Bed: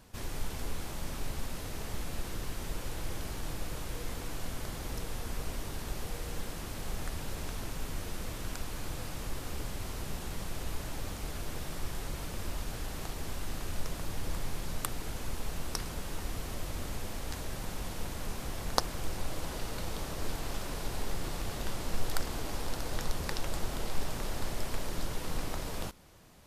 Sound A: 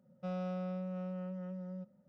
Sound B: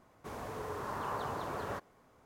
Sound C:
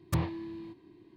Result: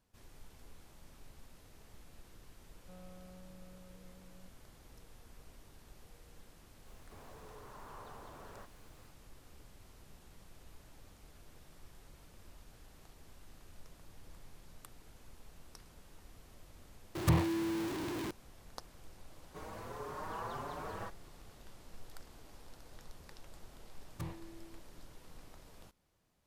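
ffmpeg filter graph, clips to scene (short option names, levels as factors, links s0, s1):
-filter_complex "[2:a]asplit=2[s0][s1];[3:a]asplit=2[s2][s3];[0:a]volume=0.106[s4];[s0]aeval=exprs='val(0)+0.5*0.00473*sgn(val(0))':c=same[s5];[s2]aeval=exprs='val(0)+0.5*0.0211*sgn(val(0))':c=same[s6];[s1]asplit=2[s7][s8];[s8]adelay=5.4,afreqshift=1.6[s9];[s7][s9]amix=inputs=2:normalize=1[s10];[s4]asplit=2[s11][s12];[s11]atrim=end=17.154[s13];[s6]atrim=end=1.16[s14];[s12]atrim=start=18.306[s15];[1:a]atrim=end=2.08,asetpts=PTS-STARTPTS,volume=0.141,afade=t=in:d=0.004:c=hsin,afade=t=out:st=2.076:d=0.004:c=hsin,adelay=2650[s16];[s5]atrim=end=2.25,asetpts=PTS-STARTPTS,volume=0.168,afade=t=in:d=0.004:c=hsin,afade=t=out:st=2.246:d=0.004:c=hsin,adelay=6860[s17];[s10]atrim=end=2.25,asetpts=PTS-STARTPTS,volume=0.841,afade=t=in:d=0.004:c=hsin,afade=t=out:st=2.246:d=0.004:c=hsin,adelay=19300[s18];[s3]atrim=end=1.16,asetpts=PTS-STARTPTS,volume=0.211,afade=t=in:d=0.004:c=hsin,afade=t=out:st=1.156:d=0.004:c=hsin,adelay=24070[s19];[s13][s14]acrossfade=d=0.004:c1=hsin:c2=hsin[s20];[s20][s15]acrossfade=d=0.004:c1=hsin:c2=hsin[s21];[s21][s16][s17][s18][s19]amix=inputs=5:normalize=0"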